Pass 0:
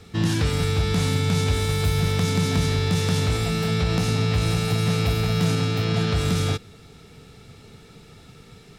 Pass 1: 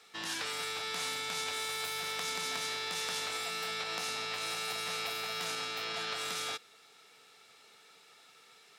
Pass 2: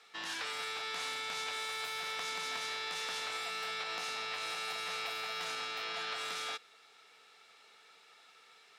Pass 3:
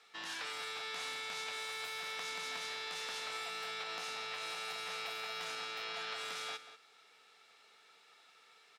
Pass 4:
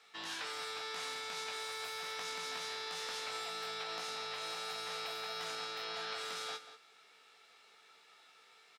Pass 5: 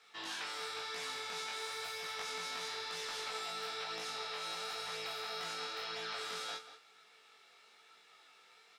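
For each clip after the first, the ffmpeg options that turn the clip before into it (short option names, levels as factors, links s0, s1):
-af "highpass=810,volume=0.531"
-filter_complex "[0:a]asplit=2[s0][s1];[s1]highpass=f=720:p=1,volume=3.98,asoftclip=type=tanh:threshold=0.141[s2];[s0][s2]amix=inputs=2:normalize=0,lowpass=f=3300:p=1,volume=0.501,volume=0.501"
-filter_complex "[0:a]asplit=2[s0][s1];[s1]adelay=186.6,volume=0.251,highshelf=f=4000:g=-4.2[s2];[s0][s2]amix=inputs=2:normalize=0,volume=0.708"
-filter_complex "[0:a]asplit=2[s0][s1];[s1]adelay=18,volume=0.473[s2];[s0][s2]amix=inputs=2:normalize=0"
-af "flanger=delay=18.5:depth=5.2:speed=1,volume=1.41"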